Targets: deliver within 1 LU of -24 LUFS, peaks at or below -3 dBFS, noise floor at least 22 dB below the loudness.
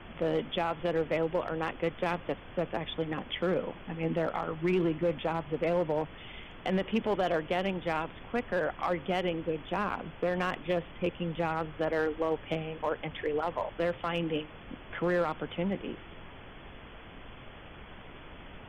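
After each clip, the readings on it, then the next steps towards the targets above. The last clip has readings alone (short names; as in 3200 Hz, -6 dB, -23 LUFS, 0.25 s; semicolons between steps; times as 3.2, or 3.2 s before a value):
clipped 0.9%; flat tops at -21.5 dBFS; noise floor -49 dBFS; noise floor target -55 dBFS; loudness -32.5 LUFS; peak -21.5 dBFS; loudness target -24.0 LUFS
-> clip repair -21.5 dBFS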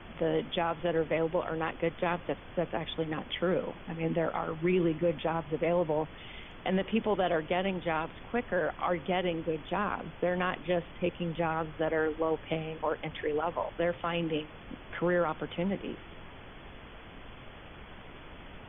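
clipped 0.0%; noise floor -49 dBFS; noise floor target -54 dBFS
-> noise print and reduce 6 dB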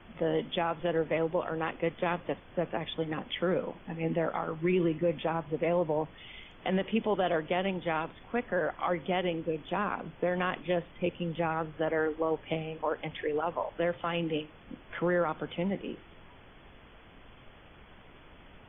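noise floor -54 dBFS; loudness -32.0 LUFS; peak -18.0 dBFS; loudness target -24.0 LUFS
-> gain +8 dB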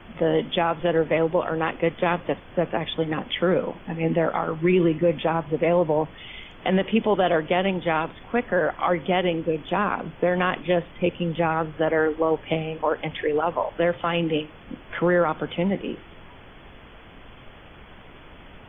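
loudness -24.0 LUFS; peak -10.0 dBFS; noise floor -46 dBFS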